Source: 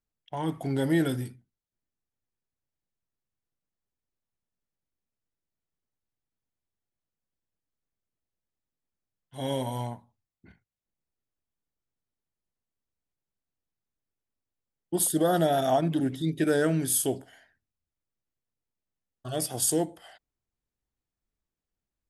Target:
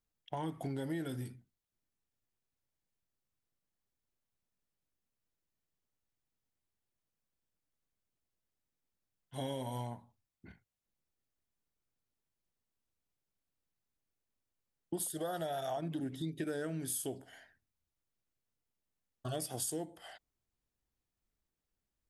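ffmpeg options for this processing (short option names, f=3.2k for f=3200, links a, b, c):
-filter_complex "[0:a]asettb=1/sr,asplit=3[a][b][c];[a]atrim=end=15.104[d];[b]atrim=start=15.1:end=15.77,asetpts=PTS-STARTPTS,afade=t=in:d=0.004:c=qsin,afade=t=out:st=0.666:d=0.004:c=qsin,equalizer=f=240:t=o:w=0.87:g=-14.5[e];[c]atrim=start=15.766[f];[d][e]acrossfade=d=0.004:c1=hsin:c2=qsin[g];[g][f]acrossfade=d=0.004:c1=qsin:c2=hsin,acompressor=threshold=-36dB:ratio=6"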